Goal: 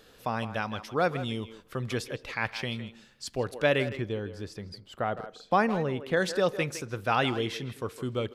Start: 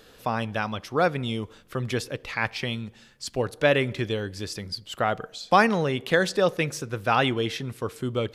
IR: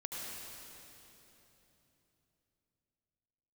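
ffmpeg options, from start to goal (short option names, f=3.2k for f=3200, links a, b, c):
-filter_complex "[0:a]asettb=1/sr,asplit=3[a][b][c];[a]atrim=end=3.874[d];[b]atrim=start=3.87:end=6.17,asetpts=PTS-STARTPTS,afade=t=in:d=0.004:c=qsin,afade=t=out:st=2.296:d=0.004:c=qsin,highshelf=f=2.1k:g=-11[e];[c]atrim=start=6.166[f];[d][e]acrossfade=d=0.004:c1=hsin:c2=qsin[g];[g][f]acrossfade=d=0.004:c1=qsin:c2=hsin,asplit=2[h][i];[i]adelay=160,highpass=300,lowpass=3.4k,asoftclip=type=hard:threshold=-16dB,volume=-11dB[j];[h][j]amix=inputs=2:normalize=0,volume=-4dB"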